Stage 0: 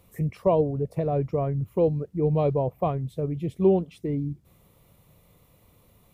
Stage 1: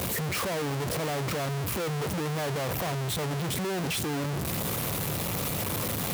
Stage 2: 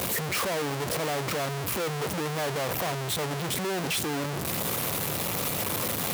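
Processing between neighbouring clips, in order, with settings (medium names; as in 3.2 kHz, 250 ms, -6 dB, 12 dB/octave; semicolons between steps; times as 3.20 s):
one-bit comparator; high-pass 89 Hz; trim -3 dB
bass shelf 180 Hz -9 dB; trim +2.5 dB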